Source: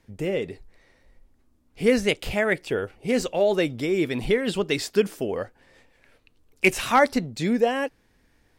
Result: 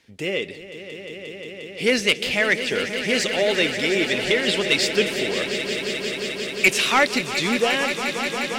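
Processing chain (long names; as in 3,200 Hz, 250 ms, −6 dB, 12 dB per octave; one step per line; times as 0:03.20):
meter weighting curve D
soft clipping −8 dBFS, distortion −13 dB
on a send: echo that builds up and dies away 177 ms, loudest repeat 5, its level −12 dB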